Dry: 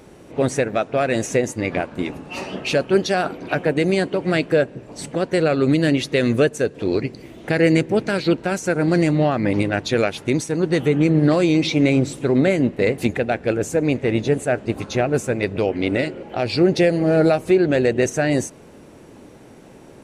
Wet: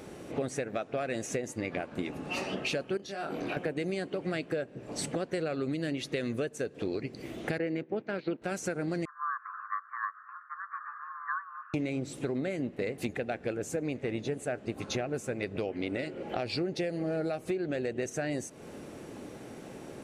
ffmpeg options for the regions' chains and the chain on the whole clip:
ffmpeg -i in.wav -filter_complex "[0:a]asettb=1/sr,asplit=3[link_01][link_02][link_03];[link_01]atrim=end=2.974[link_04];[link_02]atrim=start=2.97:end=3.57,asetpts=PTS-STARTPTS,afade=type=in:duration=0.004:curve=qsin,afade=type=out:start_time=0.596:duration=0.004:curve=qsin,acompressor=threshold=-29dB:ratio=8:attack=3.2:release=140:knee=1:detection=peak,asplit=2[link_05][link_06];[link_06]adelay=25,volume=-2.5dB[link_07];[link_05][link_07]amix=inputs=2:normalize=0,atrim=end_sample=26460[link_08];[link_03]atrim=start=3.566[link_09];[link_04][link_08]acrossfade=duration=0.004:curve1=hsin:curve2=qsin[link_10];[link_10][link_09]acrossfade=duration=0.004:curve1=qsin:curve2=hsin,asettb=1/sr,asplit=3[link_11][link_12][link_13];[link_11]atrim=end=7.584[link_14];[link_12]atrim=start=7.58:end=8.42,asetpts=PTS-STARTPTS,afade=type=in:duration=0.004:curve=qsin,afade=type=out:start_time=0.836:duration=0.004:curve=qsin,agate=range=-8dB:threshold=-24dB:ratio=16:release=100:detection=peak,highpass=170,lowpass=4900,aemphasis=mode=reproduction:type=75fm[link_15];[link_13]atrim=start=8.416[link_16];[link_14][link_15]acrossfade=duration=0.004:curve1=hsin:curve2=qsin[link_17];[link_17][link_16]acrossfade=duration=0.004:curve1=qsin:curve2=hsin,asettb=1/sr,asplit=3[link_18][link_19][link_20];[link_18]atrim=end=9.054[link_21];[link_19]atrim=start=9.05:end=11.74,asetpts=PTS-STARTPTS,afade=type=in:duration=0.004:curve=qsin,afade=type=out:start_time=2.686:duration=0.004:curve=qsin,asuperpass=centerf=930:order=12:qfactor=1.4,afreqshift=430[link_22];[link_20]atrim=start=11.736[link_23];[link_21][link_22]acrossfade=duration=0.004:curve1=hsin:curve2=qsin[link_24];[link_24][link_23]acrossfade=duration=0.004:curve1=qsin:curve2=hsin,lowshelf=frequency=72:gain=-8.5,bandreject=frequency=950:width=14,acompressor=threshold=-31dB:ratio=6" out.wav

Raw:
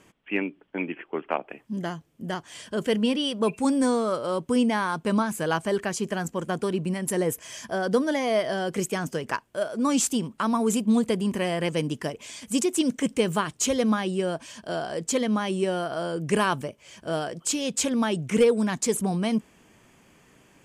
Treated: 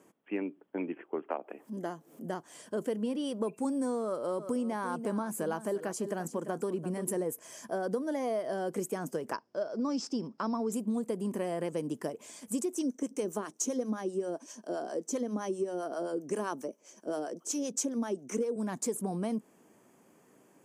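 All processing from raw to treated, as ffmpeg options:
ffmpeg -i in.wav -filter_complex "[0:a]asettb=1/sr,asplit=3[link_01][link_02][link_03];[link_01]atrim=end=1.304[link_04];[link_02]atrim=start=1.3:end=2.25,asetpts=PTS-STARTPTS,afade=type=in:duration=0.004:curve=qsin,afade=type=out:start_time=0.946:duration=0.004:curve=qsin,highpass=210,acompressor=mode=upward:threshold=-34dB:ratio=2.5:attack=3.2:release=140:knee=2.83:detection=peak[link_05];[link_03]atrim=start=2.246[link_06];[link_04][link_05]acrossfade=duration=0.004:curve1=hsin:curve2=qsin[link_07];[link_07][link_06]acrossfade=duration=0.004:curve1=qsin:curve2=hsin,asettb=1/sr,asplit=3[link_08][link_09][link_10];[link_08]atrim=end=4.044[link_11];[link_09]atrim=start=4.04:end=7.24,asetpts=PTS-STARTPTS,afade=type=in:duration=0.004:curve=qsin,afade=type=out:start_time=3.196:duration=0.004:curve=qsin,acompressor=mode=upward:threshold=-28dB:ratio=2.5:attack=3.2:release=140:knee=2.83:detection=peak,aecho=1:1:343:0.224,atrim=end_sample=141120[link_12];[link_10]atrim=start=7.236[link_13];[link_11][link_12]acrossfade=duration=0.004:curve1=hsin:curve2=qsin[link_14];[link_14][link_13]acrossfade=duration=0.004:curve1=qsin:curve2=hsin,asettb=1/sr,asplit=3[link_15][link_16][link_17];[link_15]atrim=end=9.334[link_18];[link_16]atrim=start=9.33:end=10.72,asetpts=PTS-STARTPTS,afade=type=in:duration=0.004:curve=qsin,afade=type=out:start_time=1.386:duration=0.004:curve=qsin,lowpass=frequency=5200:width_type=q:width=13,aemphasis=mode=reproduction:type=75kf[link_19];[link_17]atrim=start=10.716[link_20];[link_18][link_19]acrossfade=duration=0.004:curve1=hsin:curve2=qsin[link_21];[link_21][link_20]acrossfade=duration=0.004:curve1=qsin:curve2=hsin,asettb=1/sr,asplit=3[link_22][link_23][link_24];[link_22]atrim=end=12.744[link_25];[link_23]atrim=start=12.74:end=18.56,asetpts=PTS-STARTPTS,afade=type=in:duration=0.004:curve=qsin,afade=type=out:start_time=5.816:duration=0.004:curve=qsin,highpass=frequency=260:width_type=q:width=1.6,equalizer=frequency=6000:width_type=o:width=0.27:gain=14,acrossover=split=640[link_26][link_27];[link_26]aeval=exprs='val(0)*(1-0.7/2+0.7/2*cos(2*PI*7.6*n/s))':channel_layout=same[link_28];[link_27]aeval=exprs='val(0)*(1-0.7/2-0.7/2*cos(2*PI*7.6*n/s))':channel_layout=same[link_29];[link_28][link_29]amix=inputs=2:normalize=0[link_30];[link_24]atrim=start=18.556[link_31];[link_25][link_30]acrossfade=duration=0.004:curve1=hsin:curve2=qsin[link_32];[link_32][link_31]acrossfade=duration=0.004:curve1=qsin:curve2=hsin,highpass=250,equalizer=frequency=3000:width=0.54:gain=-15,acompressor=threshold=-29dB:ratio=6" out.wav

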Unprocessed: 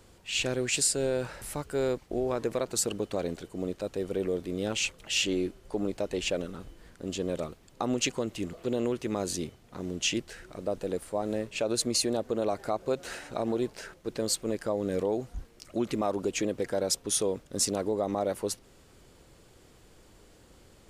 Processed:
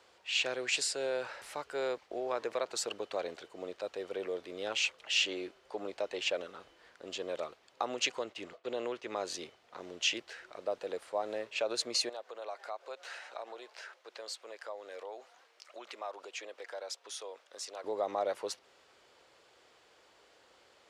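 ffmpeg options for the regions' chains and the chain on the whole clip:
ffmpeg -i in.wav -filter_complex "[0:a]asettb=1/sr,asplit=3[link_01][link_02][link_03];[link_01]atrim=end=8.244[link_04];[link_02]atrim=start=8.24:end=9.31,asetpts=PTS-STARTPTS,afade=type=in:duration=0.004:curve=qsin,afade=type=out:start_time=1.066:duration=0.004:curve=qsin,agate=range=-33dB:threshold=-41dB:ratio=3:release=100:detection=peak,highshelf=frequency=9400:gain=-7[link_05];[link_03]atrim=start=9.306[link_06];[link_04][link_05]acrossfade=duration=0.004:curve1=hsin:curve2=qsin[link_07];[link_07][link_06]acrossfade=duration=0.004:curve1=qsin:curve2=hsin,asettb=1/sr,asplit=3[link_08][link_09][link_10];[link_08]atrim=end=12.094[link_11];[link_09]atrim=start=12.09:end=17.84,asetpts=PTS-STARTPTS,afade=type=in:duration=0.004:curve=qsin,afade=type=out:start_time=5.746:duration=0.004:curve=qsin,highpass=570,acompressor=threshold=-46dB:ratio=1.5:attack=3.2:release=140:knee=1:detection=peak[link_12];[link_10]atrim=start=17.836[link_13];[link_11][link_12]acrossfade=duration=0.004:curve1=hsin:curve2=qsin[link_14];[link_14][link_13]acrossfade=duration=0.004:curve1=qsin:curve2=hsin,highpass=60,acrossover=split=470 5800:gain=0.0708 1 0.141[link_15][link_16][link_17];[link_15][link_16][link_17]amix=inputs=3:normalize=0" out.wav

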